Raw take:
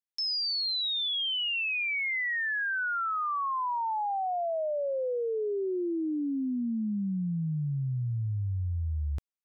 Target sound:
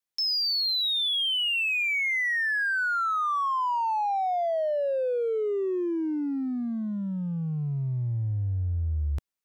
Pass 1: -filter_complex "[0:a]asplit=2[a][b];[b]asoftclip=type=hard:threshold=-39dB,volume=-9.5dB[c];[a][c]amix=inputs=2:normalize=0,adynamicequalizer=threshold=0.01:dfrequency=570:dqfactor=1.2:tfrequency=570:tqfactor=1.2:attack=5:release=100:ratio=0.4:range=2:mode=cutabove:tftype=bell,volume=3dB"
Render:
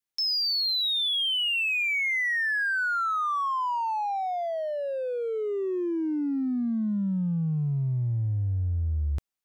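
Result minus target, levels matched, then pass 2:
500 Hz band -2.5 dB
-filter_complex "[0:a]asplit=2[a][b];[b]asoftclip=type=hard:threshold=-39dB,volume=-9.5dB[c];[a][c]amix=inputs=2:normalize=0,adynamicequalizer=threshold=0.01:dfrequency=200:dqfactor=1.2:tfrequency=200:tqfactor=1.2:attack=5:release=100:ratio=0.4:range=2:mode=cutabove:tftype=bell,volume=3dB"

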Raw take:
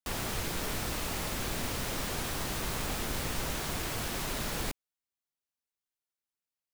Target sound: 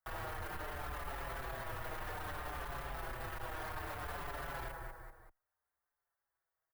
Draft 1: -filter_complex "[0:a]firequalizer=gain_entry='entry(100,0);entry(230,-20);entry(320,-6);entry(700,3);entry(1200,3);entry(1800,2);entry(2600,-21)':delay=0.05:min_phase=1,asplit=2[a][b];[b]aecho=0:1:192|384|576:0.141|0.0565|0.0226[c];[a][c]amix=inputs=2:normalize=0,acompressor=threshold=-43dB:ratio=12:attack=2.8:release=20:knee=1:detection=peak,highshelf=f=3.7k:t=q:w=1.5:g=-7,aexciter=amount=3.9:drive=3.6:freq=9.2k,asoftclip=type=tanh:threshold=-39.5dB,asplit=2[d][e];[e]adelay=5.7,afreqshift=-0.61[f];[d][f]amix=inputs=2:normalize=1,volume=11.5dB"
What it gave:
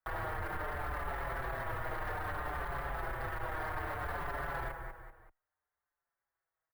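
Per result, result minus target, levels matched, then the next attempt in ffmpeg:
8000 Hz band -9.5 dB; soft clip: distortion -9 dB
-filter_complex "[0:a]firequalizer=gain_entry='entry(100,0);entry(230,-20);entry(320,-6);entry(700,3);entry(1200,3);entry(1800,2);entry(2600,-21)':delay=0.05:min_phase=1,asplit=2[a][b];[b]aecho=0:1:192|384|576:0.141|0.0565|0.0226[c];[a][c]amix=inputs=2:normalize=0,acompressor=threshold=-43dB:ratio=12:attack=2.8:release=20:knee=1:detection=peak,aexciter=amount=3.9:drive=3.6:freq=9.2k,asoftclip=type=tanh:threshold=-39.5dB,asplit=2[d][e];[e]adelay=5.7,afreqshift=-0.61[f];[d][f]amix=inputs=2:normalize=1,volume=11.5dB"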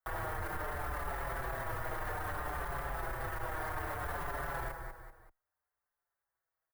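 soft clip: distortion -9 dB
-filter_complex "[0:a]firequalizer=gain_entry='entry(100,0);entry(230,-20);entry(320,-6);entry(700,3);entry(1200,3);entry(1800,2);entry(2600,-21)':delay=0.05:min_phase=1,asplit=2[a][b];[b]aecho=0:1:192|384|576:0.141|0.0565|0.0226[c];[a][c]amix=inputs=2:normalize=0,acompressor=threshold=-43dB:ratio=12:attack=2.8:release=20:knee=1:detection=peak,aexciter=amount=3.9:drive=3.6:freq=9.2k,asoftclip=type=tanh:threshold=-48.5dB,asplit=2[d][e];[e]adelay=5.7,afreqshift=-0.61[f];[d][f]amix=inputs=2:normalize=1,volume=11.5dB"

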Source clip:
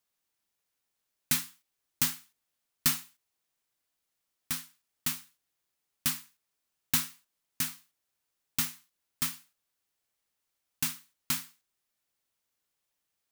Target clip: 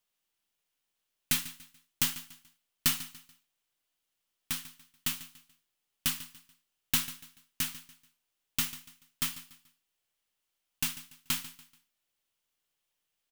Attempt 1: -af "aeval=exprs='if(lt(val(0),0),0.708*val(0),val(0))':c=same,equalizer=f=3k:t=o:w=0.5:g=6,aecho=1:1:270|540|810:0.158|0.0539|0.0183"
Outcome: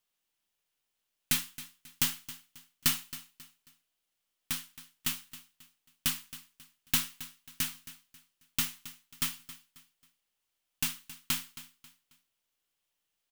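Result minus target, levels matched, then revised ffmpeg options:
echo 0.126 s late
-af "aeval=exprs='if(lt(val(0),0),0.708*val(0),val(0))':c=same,equalizer=f=3k:t=o:w=0.5:g=6,aecho=1:1:144|288|432:0.158|0.0539|0.0183"

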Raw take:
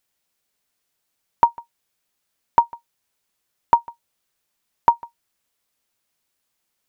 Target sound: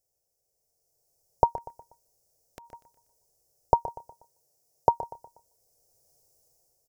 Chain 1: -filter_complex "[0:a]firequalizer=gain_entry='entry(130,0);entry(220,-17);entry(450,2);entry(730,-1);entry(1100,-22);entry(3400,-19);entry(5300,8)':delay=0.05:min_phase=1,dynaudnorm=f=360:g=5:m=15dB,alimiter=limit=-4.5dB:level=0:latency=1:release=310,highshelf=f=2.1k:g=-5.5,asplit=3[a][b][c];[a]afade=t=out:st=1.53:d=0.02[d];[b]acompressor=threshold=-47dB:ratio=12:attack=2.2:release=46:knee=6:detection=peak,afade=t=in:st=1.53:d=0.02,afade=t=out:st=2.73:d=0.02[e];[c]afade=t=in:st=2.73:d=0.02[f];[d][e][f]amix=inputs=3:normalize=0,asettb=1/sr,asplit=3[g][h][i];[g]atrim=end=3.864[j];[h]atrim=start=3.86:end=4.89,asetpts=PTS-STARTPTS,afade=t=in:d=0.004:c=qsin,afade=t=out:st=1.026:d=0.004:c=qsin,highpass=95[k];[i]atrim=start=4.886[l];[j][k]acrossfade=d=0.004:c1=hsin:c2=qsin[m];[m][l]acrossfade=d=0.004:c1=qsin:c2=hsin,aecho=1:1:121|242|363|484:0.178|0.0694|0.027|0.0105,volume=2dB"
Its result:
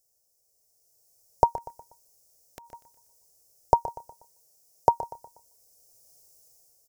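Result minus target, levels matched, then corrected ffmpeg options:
4000 Hz band +5.5 dB
-filter_complex "[0:a]firequalizer=gain_entry='entry(130,0);entry(220,-17);entry(450,2);entry(730,-1);entry(1100,-22);entry(3400,-19);entry(5300,8)':delay=0.05:min_phase=1,dynaudnorm=f=360:g=5:m=15dB,alimiter=limit=-4.5dB:level=0:latency=1:release=310,highshelf=f=2.1k:g=-14.5,asplit=3[a][b][c];[a]afade=t=out:st=1.53:d=0.02[d];[b]acompressor=threshold=-47dB:ratio=12:attack=2.2:release=46:knee=6:detection=peak,afade=t=in:st=1.53:d=0.02,afade=t=out:st=2.73:d=0.02[e];[c]afade=t=in:st=2.73:d=0.02[f];[d][e][f]amix=inputs=3:normalize=0,asettb=1/sr,asplit=3[g][h][i];[g]atrim=end=3.864[j];[h]atrim=start=3.86:end=4.89,asetpts=PTS-STARTPTS,afade=t=in:d=0.004:c=qsin,afade=t=out:st=1.026:d=0.004:c=qsin,highpass=95[k];[i]atrim=start=4.886[l];[j][k]acrossfade=d=0.004:c1=hsin:c2=qsin[m];[m][l]acrossfade=d=0.004:c1=qsin:c2=hsin,aecho=1:1:121|242|363|484:0.178|0.0694|0.027|0.0105,volume=2dB"

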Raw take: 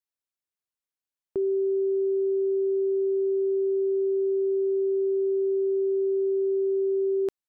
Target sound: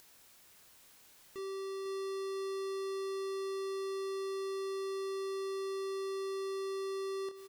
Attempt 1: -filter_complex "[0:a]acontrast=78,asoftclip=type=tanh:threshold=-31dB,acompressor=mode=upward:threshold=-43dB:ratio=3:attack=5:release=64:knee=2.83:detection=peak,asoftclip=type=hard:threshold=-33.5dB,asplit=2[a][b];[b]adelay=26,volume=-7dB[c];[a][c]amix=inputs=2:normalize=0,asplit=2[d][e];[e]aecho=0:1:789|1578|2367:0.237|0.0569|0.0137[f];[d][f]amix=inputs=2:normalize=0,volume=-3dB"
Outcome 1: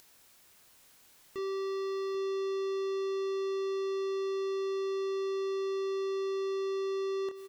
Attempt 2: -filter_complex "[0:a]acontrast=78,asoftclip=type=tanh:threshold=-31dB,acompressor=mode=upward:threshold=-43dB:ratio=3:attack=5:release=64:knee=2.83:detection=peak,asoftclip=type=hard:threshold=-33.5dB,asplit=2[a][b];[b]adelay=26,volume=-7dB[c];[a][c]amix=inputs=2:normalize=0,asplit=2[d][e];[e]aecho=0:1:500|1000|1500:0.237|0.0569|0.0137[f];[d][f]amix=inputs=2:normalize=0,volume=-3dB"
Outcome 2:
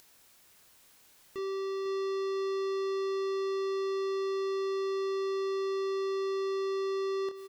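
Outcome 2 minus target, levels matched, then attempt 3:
hard clip: distortion -7 dB
-filter_complex "[0:a]acontrast=78,asoftclip=type=tanh:threshold=-31dB,acompressor=mode=upward:threshold=-43dB:ratio=3:attack=5:release=64:knee=2.83:detection=peak,asoftclip=type=hard:threshold=-39.5dB,asplit=2[a][b];[b]adelay=26,volume=-7dB[c];[a][c]amix=inputs=2:normalize=0,asplit=2[d][e];[e]aecho=0:1:500|1000|1500:0.237|0.0569|0.0137[f];[d][f]amix=inputs=2:normalize=0,volume=-3dB"

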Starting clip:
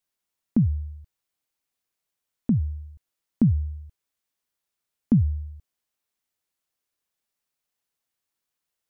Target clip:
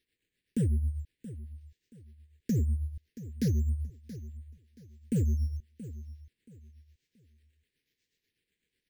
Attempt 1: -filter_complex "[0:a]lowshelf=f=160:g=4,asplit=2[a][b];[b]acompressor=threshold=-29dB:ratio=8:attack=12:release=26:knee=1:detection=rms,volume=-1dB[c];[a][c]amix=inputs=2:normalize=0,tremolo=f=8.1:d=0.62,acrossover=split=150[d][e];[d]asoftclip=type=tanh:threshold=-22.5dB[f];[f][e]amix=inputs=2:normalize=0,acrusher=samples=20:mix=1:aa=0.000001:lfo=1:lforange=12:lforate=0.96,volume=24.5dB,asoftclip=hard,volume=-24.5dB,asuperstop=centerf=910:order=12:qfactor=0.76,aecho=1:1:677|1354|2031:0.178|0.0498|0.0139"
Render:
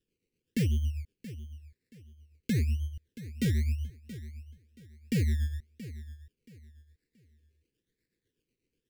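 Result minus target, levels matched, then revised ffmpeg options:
decimation with a swept rate: distortion +11 dB
-filter_complex "[0:a]lowshelf=f=160:g=4,asplit=2[a][b];[b]acompressor=threshold=-29dB:ratio=8:attack=12:release=26:knee=1:detection=rms,volume=-1dB[c];[a][c]amix=inputs=2:normalize=0,tremolo=f=8.1:d=0.62,acrossover=split=150[d][e];[d]asoftclip=type=tanh:threshold=-22.5dB[f];[f][e]amix=inputs=2:normalize=0,acrusher=samples=6:mix=1:aa=0.000001:lfo=1:lforange=3.6:lforate=0.96,volume=24.5dB,asoftclip=hard,volume=-24.5dB,asuperstop=centerf=910:order=12:qfactor=0.76,aecho=1:1:677|1354|2031:0.178|0.0498|0.0139"

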